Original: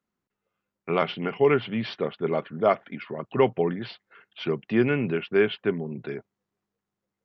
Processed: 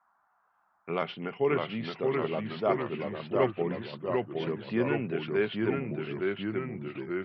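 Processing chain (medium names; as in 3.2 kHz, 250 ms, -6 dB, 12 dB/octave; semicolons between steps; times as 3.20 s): ever faster or slower copies 547 ms, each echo -1 st, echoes 3; band noise 700–1500 Hz -64 dBFS; trim -7 dB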